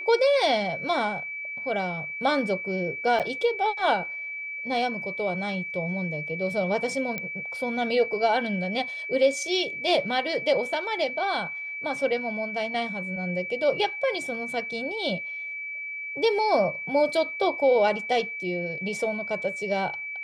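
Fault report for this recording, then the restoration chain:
tone 2300 Hz -32 dBFS
3.19–3.2 gap 7.8 ms
7.18 pop -16 dBFS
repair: de-click; notch 2300 Hz, Q 30; interpolate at 3.19, 7.8 ms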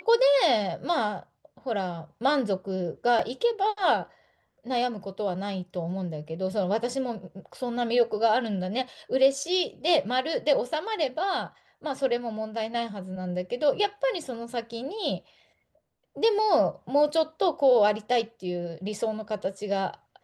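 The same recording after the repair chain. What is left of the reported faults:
none

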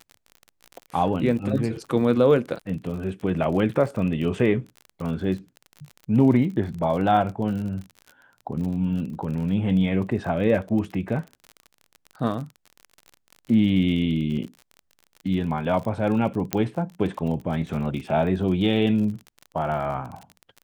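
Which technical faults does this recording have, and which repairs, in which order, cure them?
crackle 39/s -32 dBFS
16.53 pop -7 dBFS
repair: de-click

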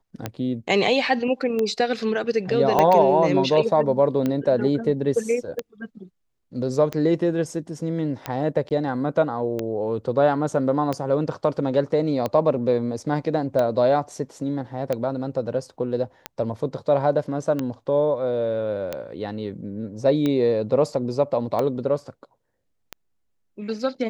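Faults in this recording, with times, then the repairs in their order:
tick 45 rpm -12 dBFS
2.79 pop -6 dBFS
8.69–8.71 gap 18 ms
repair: de-click; interpolate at 8.69, 18 ms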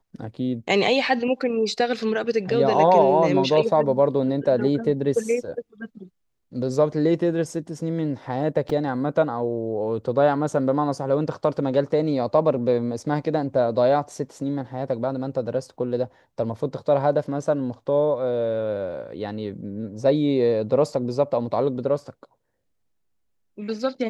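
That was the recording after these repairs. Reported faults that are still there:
2.79 pop

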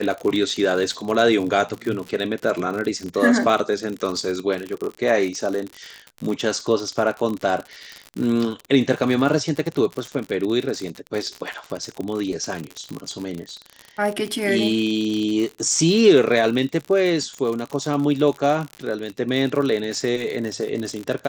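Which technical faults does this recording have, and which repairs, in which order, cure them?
crackle 58/s -25 dBFS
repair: de-click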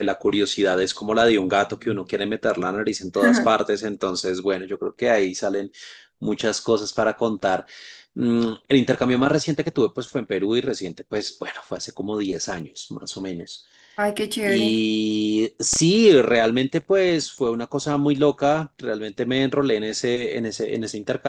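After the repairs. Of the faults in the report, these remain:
none

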